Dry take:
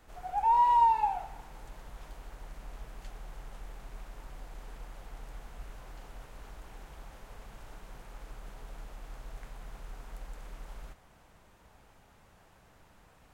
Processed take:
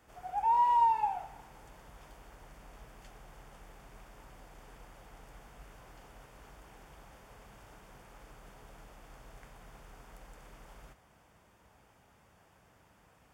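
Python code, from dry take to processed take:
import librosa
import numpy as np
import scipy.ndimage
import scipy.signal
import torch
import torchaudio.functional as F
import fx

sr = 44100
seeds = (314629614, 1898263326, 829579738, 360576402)

y = scipy.signal.sosfilt(scipy.signal.butter(2, 61.0, 'highpass', fs=sr, output='sos'), x)
y = fx.notch(y, sr, hz=4000.0, q=7.8)
y = F.gain(torch.from_numpy(y), -2.5).numpy()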